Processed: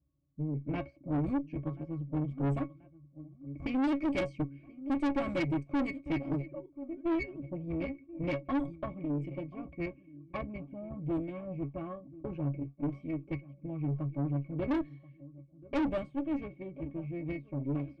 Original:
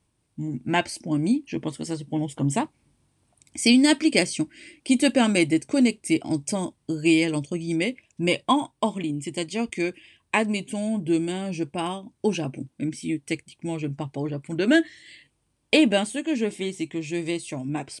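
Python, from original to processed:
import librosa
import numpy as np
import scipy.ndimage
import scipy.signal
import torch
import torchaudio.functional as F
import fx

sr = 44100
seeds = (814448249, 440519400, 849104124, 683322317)

p1 = fx.sine_speech(x, sr, at=(6.42, 7.43))
p2 = fx.schmitt(p1, sr, flips_db=-19.5)
p3 = p1 + (p2 * librosa.db_to_amplitude(-8.5))
p4 = fx.octave_resonator(p3, sr, note='C#', decay_s=0.13)
p5 = p4 + fx.echo_feedback(p4, sr, ms=1033, feedback_pct=42, wet_db=-20.0, dry=0)
p6 = fx.env_lowpass(p5, sr, base_hz=810.0, full_db=-25.5)
p7 = fx.tube_stage(p6, sr, drive_db=31.0, bias=0.55)
p8 = fx.sustainer(p7, sr, db_per_s=130.0, at=(8.48, 9.73))
y = p8 * librosa.db_to_amplitude(4.5)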